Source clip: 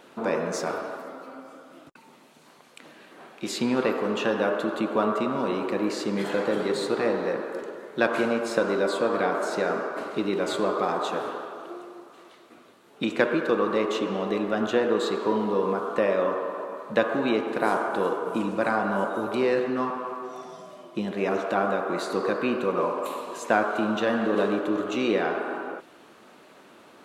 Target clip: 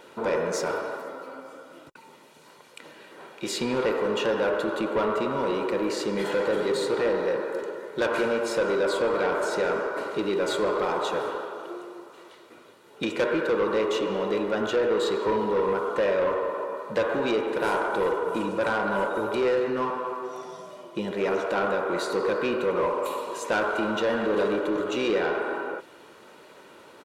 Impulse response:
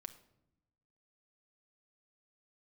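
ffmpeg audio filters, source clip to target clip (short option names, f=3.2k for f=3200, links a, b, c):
-af "aecho=1:1:2.1:0.42,asoftclip=type=tanh:threshold=-20dB,volume=1.5dB"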